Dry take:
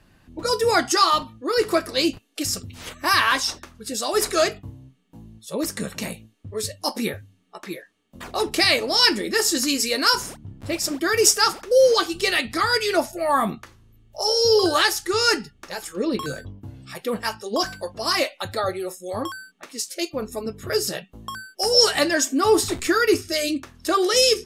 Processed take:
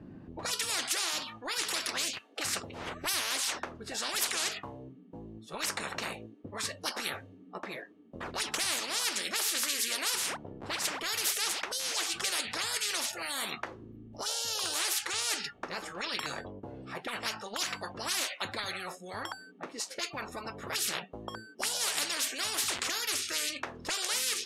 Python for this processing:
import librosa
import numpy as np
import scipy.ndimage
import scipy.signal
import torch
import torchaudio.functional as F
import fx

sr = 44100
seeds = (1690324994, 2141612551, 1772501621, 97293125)

y = fx.auto_wah(x, sr, base_hz=230.0, top_hz=3800.0, q=2.3, full_db=-18.5, direction='up')
y = fx.spectral_comp(y, sr, ratio=10.0)
y = y * 10.0 ** (-5.0 / 20.0)